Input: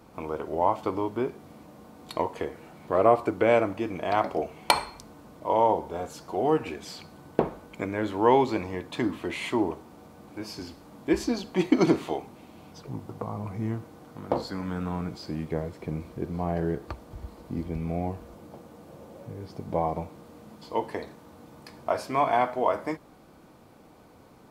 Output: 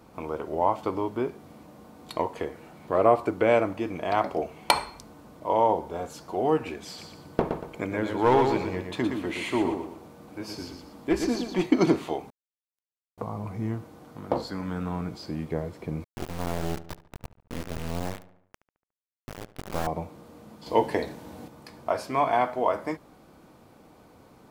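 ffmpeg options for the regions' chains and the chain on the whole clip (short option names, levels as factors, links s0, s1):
-filter_complex "[0:a]asettb=1/sr,asplit=3[s0][s1][s2];[s0]atrim=end=6.864[s3];[s1]atrim=start=6.86:end=11.66,asetpts=PTS-STARTPTS,afade=t=in:d=0.004:c=qsin,afade=t=out:st=4.796:d=0.004:c=qsin,aeval=exprs='clip(val(0),-1,0.112)':c=same,aecho=1:1:118|236|354|472:0.501|0.165|0.0546|0.018,atrim=end_sample=211680[s4];[s2]atrim=start=11.656[s5];[s3][s4]acrossfade=d=0.004:c1=hsin:c2=qsin[s6];[s6][s5]acrossfade=d=0.004:c1=qsin:c2=hsin,asettb=1/sr,asplit=3[s7][s8][s9];[s7]atrim=end=12.304[s10];[s8]atrim=start=12.3:end=13.18,asetpts=PTS-STARTPTS,afade=t=in:d=0.004:c=qsin,afade=t=out:st=0.876:d=0.004:c=qsin,aderivative,acrusher=bits=4:dc=4:mix=0:aa=0.000001,aeval=exprs='(tanh(316*val(0)+0.7)-tanh(0.7))/316':c=same[s11];[s9]atrim=start=13.176[s12];[s10][s11]acrossfade=d=0.004:c1=hsin:c2=qsin[s13];[s13][s12]acrossfade=d=0.004:c1=qsin:c2=hsin,asettb=1/sr,asplit=3[s14][s15][s16];[s14]atrim=end=16.044[s17];[s15]atrim=start=16.04:end=19.87,asetpts=PTS-STARTPTS,afade=t=in:d=0.004:c=qsin,afade=t=out:st=3.826:d=0.004:c=qsin,acrusher=bits=3:dc=4:mix=0:aa=0.000001,asplit=2[s18][s19];[s19]adelay=72,lowpass=f=2900:p=1,volume=0.158,asplit=2[s20][s21];[s21]adelay=72,lowpass=f=2900:p=1,volume=0.55,asplit=2[s22][s23];[s23]adelay=72,lowpass=f=2900:p=1,volume=0.55,asplit=2[s24][s25];[s25]adelay=72,lowpass=f=2900:p=1,volume=0.55,asplit=2[s26][s27];[s27]adelay=72,lowpass=f=2900:p=1,volume=0.55[s28];[s18][s20][s22][s24][s26][s28]amix=inputs=6:normalize=0,atrim=end_sample=168903[s29];[s16]atrim=start=19.866[s30];[s17][s29]acrossfade=d=0.004:c1=hsin:c2=qsin[s31];[s31][s30]acrossfade=d=0.004:c1=qsin:c2=hsin,asettb=1/sr,asplit=3[s32][s33][s34];[s32]atrim=end=20.664[s35];[s33]atrim=start=20.66:end=21.48,asetpts=PTS-STARTPTS,afade=t=in:d=0.004:c=qsin,afade=t=out:st=0.816:d=0.004:c=qsin,equalizer=f=1200:t=o:w=0.37:g=-7.5,acontrast=85,asplit=2[s36][s37];[s37]adelay=16,volume=0.2[s38];[s36][s38]amix=inputs=2:normalize=0,atrim=end_sample=36162[s39];[s34]atrim=start=21.476[s40];[s35][s39]acrossfade=d=0.004:c1=hsin:c2=qsin[s41];[s41][s40]acrossfade=d=0.004:c1=qsin:c2=hsin"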